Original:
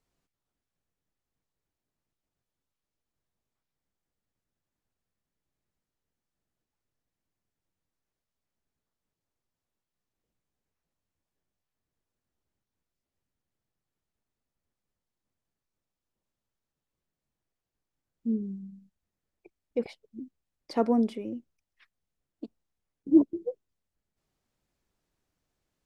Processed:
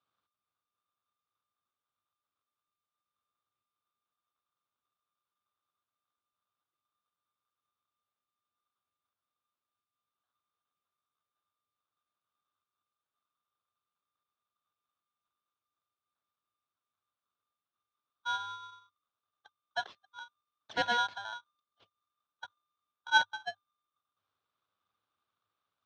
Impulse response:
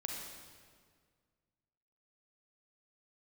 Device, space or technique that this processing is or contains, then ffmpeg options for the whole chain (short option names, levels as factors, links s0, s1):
ring modulator pedal into a guitar cabinet: -af "aeval=exprs='val(0)*sgn(sin(2*PI*1200*n/s))':c=same,highpass=76,equalizer=f=100:t=q:w=4:g=10,equalizer=f=920:t=q:w=4:g=-4,equalizer=f=1900:t=q:w=4:g=-7,lowpass=f=4300:w=0.5412,lowpass=f=4300:w=1.3066,volume=0.668"